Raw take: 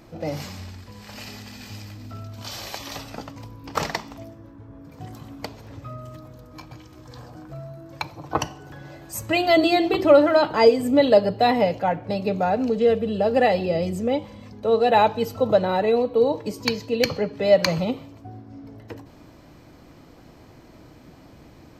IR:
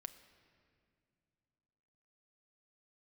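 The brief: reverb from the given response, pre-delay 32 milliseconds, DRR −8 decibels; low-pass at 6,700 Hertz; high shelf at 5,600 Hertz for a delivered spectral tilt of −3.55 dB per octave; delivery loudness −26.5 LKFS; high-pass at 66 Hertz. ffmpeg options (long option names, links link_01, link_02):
-filter_complex "[0:a]highpass=66,lowpass=6700,highshelf=frequency=5600:gain=8.5,asplit=2[link_01][link_02];[1:a]atrim=start_sample=2205,adelay=32[link_03];[link_02][link_03]afir=irnorm=-1:irlink=0,volume=13dB[link_04];[link_01][link_04]amix=inputs=2:normalize=0,volume=-14dB"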